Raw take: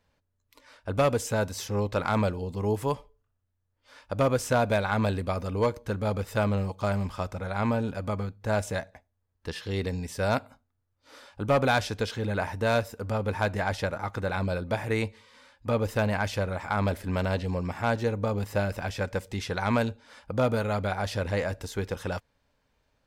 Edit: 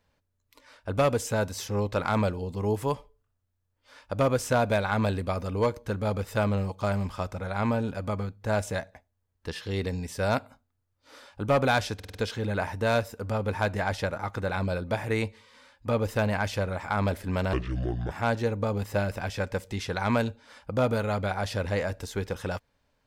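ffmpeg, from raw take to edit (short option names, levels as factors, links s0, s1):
-filter_complex "[0:a]asplit=7[s0][s1][s2][s3][s4][s5][s6];[s0]atrim=end=12.002[s7];[s1]atrim=start=11.948:end=12.002[s8];[s2]atrim=start=11.948:end=12.002[s9];[s3]atrim=start=11.948:end=12.002[s10];[s4]atrim=start=11.948:end=17.334[s11];[s5]atrim=start=17.33:end=17.72,asetpts=PTS-STARTPTS,asetrate=29547,aresample=44100,atrim=end_sample=25670,asetpts=PTS-STARTPTS[s12];[s6]atrim=start=17.716[s13];[s7][s8]acrossfade=d=0.004:c1=hsin:c2=hsin[s14];[s14][s9]acrossfade=d=0.004:c1=hsin:c2=hsin[s15];[s15][s10]acrossfade=d=0.004:c1=hsin:c2=hsin[s16];[s16][s11]acrossfade=d=0.004:c1=hsin:c2=hsin[s17];[s17][s12]acrossfade=d=0.004:c1=hsin:c2=hsin[s18];[s18][s13]acrossfade=d=0.004:c1=hsin:c2=hsin"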